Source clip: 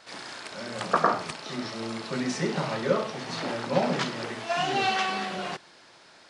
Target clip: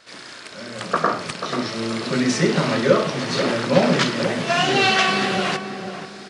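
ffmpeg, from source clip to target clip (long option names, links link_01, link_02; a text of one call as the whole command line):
ffmpeg -i in.wav -filter_complex "[0:a]asplit=2[link_01][link_02];[link_02]volume=15.5dB,asoftclip=hard,volume=-15.5dB,volume=-10dB[link_03];[link_01][link_03]amix=inputs=2:normalize=0,equalizer=frequency=830:width_type=o:width=0.57:gain=-7.5,asplit=2[link_04][link_05];[link_05]adelay=488,lowpass=frequency=1100:poles=1,volume=-8.5dB,asplit=2[link_06][link_07];[link_07]adelay=488,lowpass=frequency=1100:poles=1,volume=0.35,asplit=2[link_08][link_09];[link_09]adelay=488,lowpass=frequency=1100:poles=1,volume=0.35,asplit=2[link_10][link_11];[link_11]adelay=488,lowpass=frequency=1100:poles=1,volume=0.35[link_12];[link_04][link_06][link_08][link_10][link_12]amix=inputs=5:normalize=0,dynaudnorm=framelen=370:gausssize=7:maxgain=12dB" out.wav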